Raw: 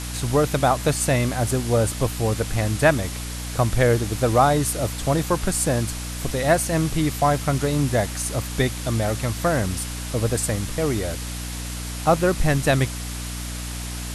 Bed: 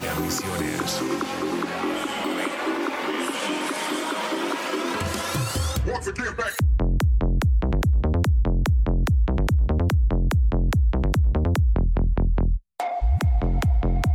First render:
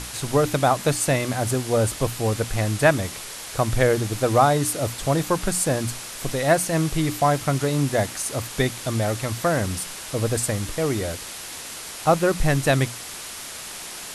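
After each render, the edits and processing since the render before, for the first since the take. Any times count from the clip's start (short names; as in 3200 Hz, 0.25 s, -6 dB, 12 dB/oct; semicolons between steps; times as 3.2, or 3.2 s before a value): notches 60/120/180/240/300 Hz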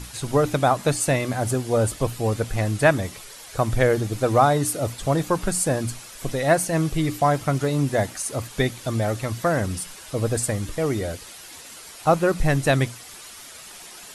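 denoiser 9 dB, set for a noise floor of -36 dBFS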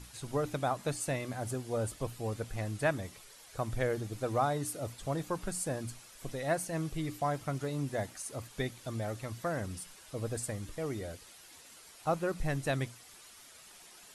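gain -13 dB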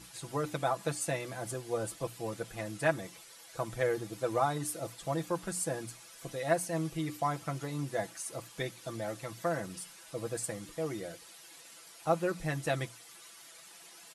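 HPF 200 Hz 6 dB/oct; comb 6 ms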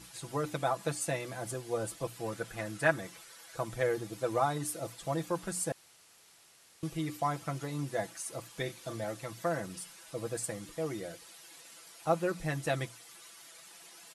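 2.16–3.56 bell 1500 Hz +5.5 dB 0.68 oct; 5.72–6.83 room tone; 8.63–9.04 doubler 37 ms -9.5 dB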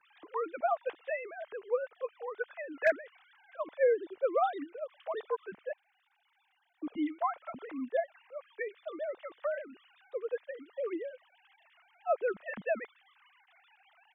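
sine-wave speech; hard clip -17 dBFS, distortion -39 dB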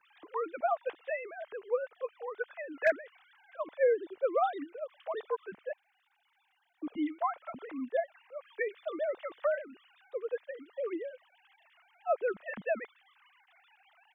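8.45–9.56 gain +4 dB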